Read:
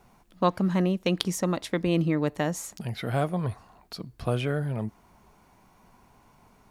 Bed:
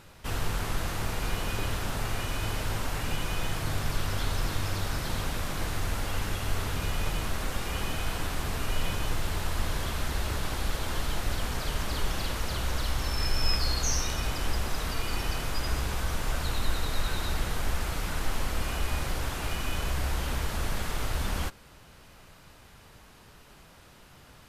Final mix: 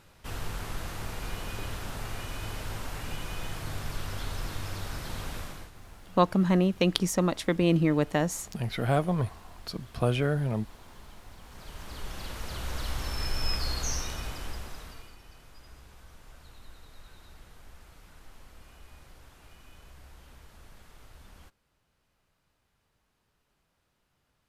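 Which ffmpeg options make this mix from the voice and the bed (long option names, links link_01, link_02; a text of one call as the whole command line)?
ffmpeg -i stem1.wav -i stem2.wav -filter_complex "[0:a]adelay=5750,volume=1dB[link_01];[1:a]volume=11dB,afade=type=out:start_time=5.38:duration=0.33:silence=0.188365,afade=type=in:start_time=11.42:duration=1.5:silence=0.149624,afade=type=out:start_time=13.86:duration=1.3:silence=0.11885[link_02];[link_01][link_02]amix=inputs=2:normalize=0" out.wav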